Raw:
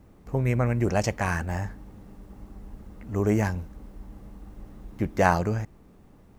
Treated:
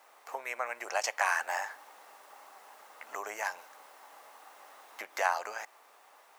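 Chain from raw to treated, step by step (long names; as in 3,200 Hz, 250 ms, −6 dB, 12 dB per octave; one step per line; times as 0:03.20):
downward compressor 16 to 1, threshold −28 dBFS, peak gain reduction 14.5 dB
high-pass filter 730 Hz 24 dB per octave
level +8 dB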